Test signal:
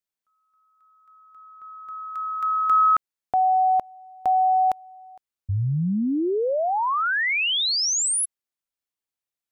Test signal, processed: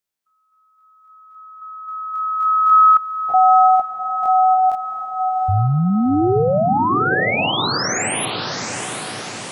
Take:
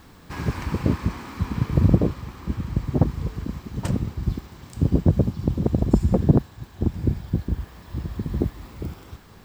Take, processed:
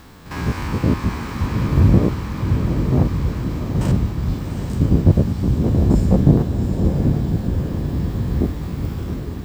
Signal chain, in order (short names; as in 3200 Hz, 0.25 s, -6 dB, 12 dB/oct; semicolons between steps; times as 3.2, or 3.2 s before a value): stepped spectrum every 50 ms; diffused feedback echo 0.771 s, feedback 58%, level -6 dB; gain +6.5 dB